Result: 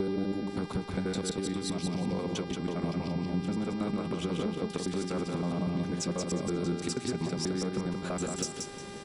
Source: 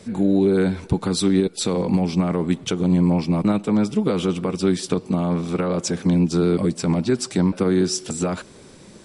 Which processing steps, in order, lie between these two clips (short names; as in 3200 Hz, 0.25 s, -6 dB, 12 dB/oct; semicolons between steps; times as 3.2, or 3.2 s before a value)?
slices in reverse order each 81 ms, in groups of 7; compressor 6:1, threshold -28 dBFS, peak gain reduction 13.5 dB; soft clip -16 dBFS, distortion -29 dB; on a send: feedback echo 0.179 s, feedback 27%, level -4.5 dB; on the sum: buzz 400 Hz, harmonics 14, -44 dBFS -5 dB/oct; gain -2 dB